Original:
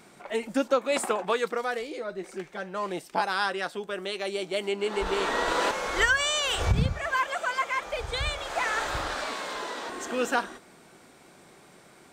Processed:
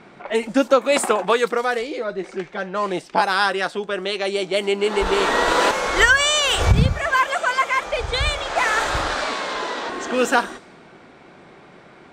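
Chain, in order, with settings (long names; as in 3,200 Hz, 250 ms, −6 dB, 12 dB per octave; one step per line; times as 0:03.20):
low-pass that shuts in the quiet parts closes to 2,800 Hz, open at −24 dBFS
level +8.5 dB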